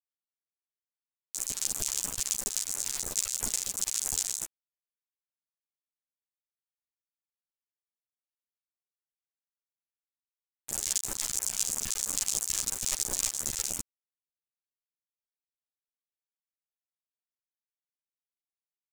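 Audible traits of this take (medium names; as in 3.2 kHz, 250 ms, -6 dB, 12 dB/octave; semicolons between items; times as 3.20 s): phasing stages 2, 3 Hz, lowest notch 240–3500 Hz; a quantiser's noise floor 6-bit, dither none; a shimmering, thickened sound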